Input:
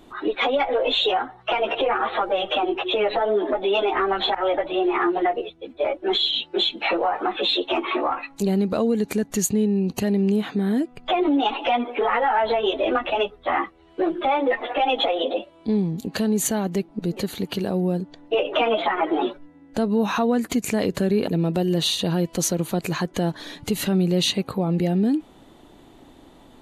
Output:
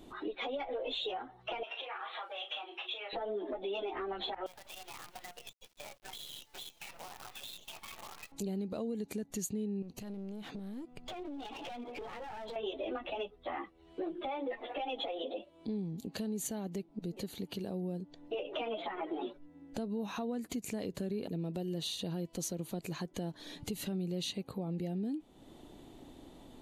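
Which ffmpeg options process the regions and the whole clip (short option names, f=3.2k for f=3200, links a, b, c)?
-filter_complex "[0:a]asettb=1/sr,asplit=3[a][b][c];[a]atrim=end=1.634[d];[b]atrim=start=1.63:end=3.13,asetpts=PTS-STARTPTS,afade=t=in:d=0.004:c=qsin,afade=t=out:st=1.496:d=0.004:c=qsin,highpass=1.2k,asplit=2[e][f];[f]adelay=35,volume=-7.5dB[g];[e][g]amix=inputs=2:normalize=0,atrim=end_sample=66150[h];[c]atrim=start=3.126[i];[d][h]acrossfade=d=0.004:c1=hsin:c2=qsin[j];[j][i]acrossfade=d=0.004:c1=qsin:c2=hsin,asettb=1/sr,asplit=3[k][l][m];[k]atrim=end=4.464[n];[l]atrim=start=4.46:end=8.32,asetpts=PTS-STARTPTS,afade=t=in:d=0.004:c=qsin,afade=t=out:st=3.856:d=0.004:c=qsin,highpass=f=860:w=0.5412,highpass=f=860:w=1.3066,acompressor=threshold=-36dB:ratio=12:attack=3.2:release=140:knee=1:detection=peak,acrusher=bits=7:dc=4:mix=0:aa=0.000001[o];[m]atrim=start=8.316[p];[n][o]acrossfade=d=0.004:c1=hsin:c2=qsin[q];[q][p]acrossfade=d=0.004:c1=qsin:c2=hsin,asettb=1/sr,asplit=3[r][s][t];[r]atrim=end=9.824[u];[s]atrim=start=9.82:end=12.56,asetpts=PTS-STARTPTS,afade=t=in:d=0.004:c=qsin,afade=t=out:st=2.736:d=0.004:c=qsin,acompressor=threshold=-29dB:ratio=4:attack=3.2:release=140:knee=1:detection=peak,aeval=exprs='clip(val(0),-1,0.0188)':c=same[v];[t]atrim=start=12.556[w];[u][v]acrossfade=d=0.004:c1=hsin:c2=qsin[x];[x][w]acrossfade=d=0.004:c1=qsin:c2=hsin,equalizer=f=1.4k:t=o:w=1.6:g=-6.5,acompressor=threshold=-41dB:ratio=2,volume=-3.5dB"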